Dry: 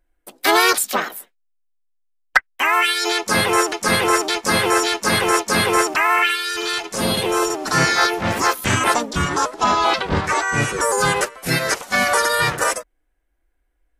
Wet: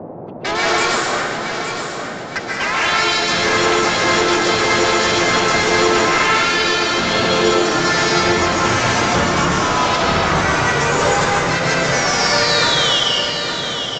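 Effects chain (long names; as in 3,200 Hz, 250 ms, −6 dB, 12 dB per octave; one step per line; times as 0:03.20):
gate on every frequency bin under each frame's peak −25 dB strong
low-pass that shuts in the quiet parts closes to 1,300 Hz, open at −17.5 dBFS
sound drawn into the spectrogram fall, 0:11.94–0:13.00, 2,800–6,000 Hz −22 dBFS
gain into a clipping stage and back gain 20.5 dB
downsampling to 16,000 Hz
on a send: repeating echo 863 ms, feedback 42%, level −7.5 dB
on the sum: dense smooth reverb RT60 1.9 s, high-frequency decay 0.85×, pre-delay 115 ms, DRR −4.5 dB
noise in a band 110–730 Hz −33 dBFS
level +1.5 dB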